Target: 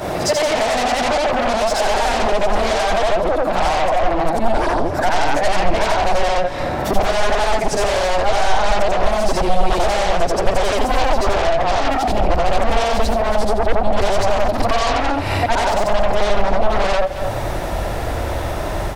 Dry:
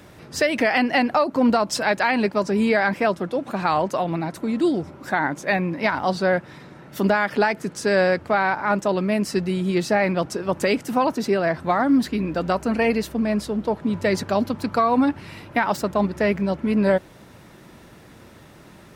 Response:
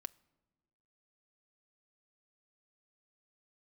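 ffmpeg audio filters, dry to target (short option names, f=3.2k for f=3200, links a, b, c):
-filter_complex "[0:a]afftfilt=real='re':imag='-im':win_size=8192:overlap=0.75,asplit=2[a][b];[b]aeval=exprs='0.299*sin(PI/2*8.91*val(0)/0.299)':c=same,volume=-7dB[c];[a][c]amix=inputs=2:normalize=0,acrossover=split=9600[d][e];[e]acompressor=threshold=-42dB:ratio=4:attack=1:release=60[f];[d][f]amix=inputs=2:normalize=0,equalizer=f=680:t=o:w=0.93:g=12,asplit=2[g][h];[h]aecho=0:1:224:0.158[i];[g][i]amix=inputs=2:normalize=0,acompressor=threshold=-21dB:ratio=10,asubboost=boost=12:cutoff=51,volume=6.5dB"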